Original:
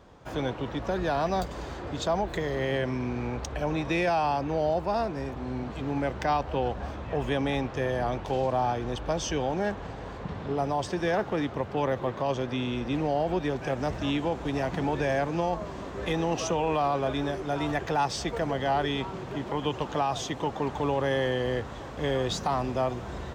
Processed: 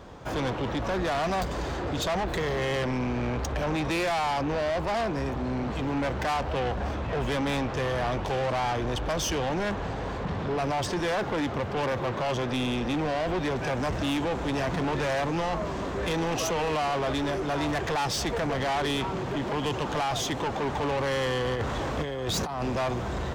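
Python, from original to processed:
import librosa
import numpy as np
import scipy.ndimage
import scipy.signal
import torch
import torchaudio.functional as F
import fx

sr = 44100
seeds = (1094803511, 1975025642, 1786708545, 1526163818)

y = fx.over_compress(x, sr, threshold_db=-32.0, ratio=-0.5, at=(21.55, 22.62))
y = 10.0 ** (-33.0 / 20.0) * np.tanh(y / 10.0 ** (-33.0 / 20.0))
y = y * librosa.db_to_amplitude(8.0)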